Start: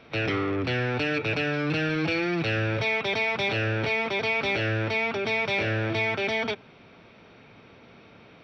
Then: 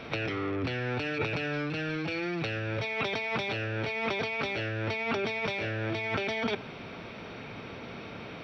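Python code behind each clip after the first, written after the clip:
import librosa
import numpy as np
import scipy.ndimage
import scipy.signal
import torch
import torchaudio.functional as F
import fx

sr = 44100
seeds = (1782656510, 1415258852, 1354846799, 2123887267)

y = fx.over_compress(x, sr, threshold_db=-34.0, ratio=-1.0)
y = y * 10.0 ** (2.0 / 20.0)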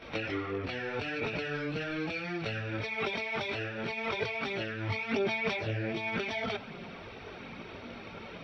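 y = fx.chorus_voices(x, sr, voices=4, hz=0.68, base_ms=20, depth_ms=2.9, mix_pct=70)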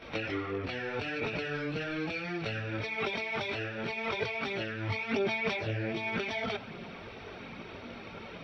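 y = x + 10.0 ** (-23.5 / 20.0) * np.pad(x, (int(887 * sr / 1000.0), 0))[:len(x)]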